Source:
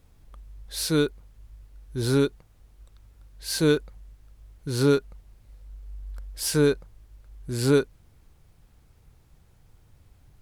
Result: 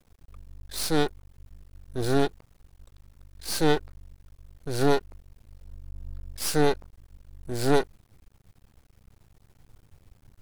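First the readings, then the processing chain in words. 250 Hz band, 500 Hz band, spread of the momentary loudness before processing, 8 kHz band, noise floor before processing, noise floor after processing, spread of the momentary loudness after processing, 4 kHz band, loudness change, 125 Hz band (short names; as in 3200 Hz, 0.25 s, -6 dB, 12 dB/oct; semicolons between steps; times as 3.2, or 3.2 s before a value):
-3.0 dB, -2.0 dB, 18 LU, -2.0 dB, -58 dBFS, -62 dBFS, 18 LU, -1.5 dB, -2.5 dB, -4.5 dB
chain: half-wave rectifier; gain +3 dB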